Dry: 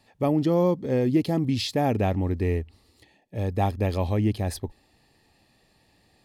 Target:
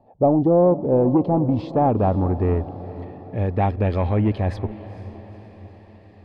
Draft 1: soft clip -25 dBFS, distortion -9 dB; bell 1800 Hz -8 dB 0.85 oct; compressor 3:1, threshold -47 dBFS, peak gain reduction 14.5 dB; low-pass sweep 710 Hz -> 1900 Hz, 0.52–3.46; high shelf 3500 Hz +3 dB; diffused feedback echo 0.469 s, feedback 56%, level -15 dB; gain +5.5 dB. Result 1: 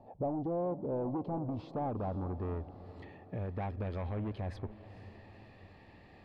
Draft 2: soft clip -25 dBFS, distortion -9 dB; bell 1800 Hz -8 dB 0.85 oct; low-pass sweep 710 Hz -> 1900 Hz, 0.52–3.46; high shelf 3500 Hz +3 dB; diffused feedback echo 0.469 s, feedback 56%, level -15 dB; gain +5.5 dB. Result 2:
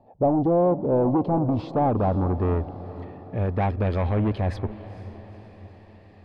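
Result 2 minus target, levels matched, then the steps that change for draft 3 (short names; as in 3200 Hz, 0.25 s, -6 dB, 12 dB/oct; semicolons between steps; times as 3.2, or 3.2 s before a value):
soft clip: distortion +7 dB
change: soft clip -18 dBFS, distortion -16 dB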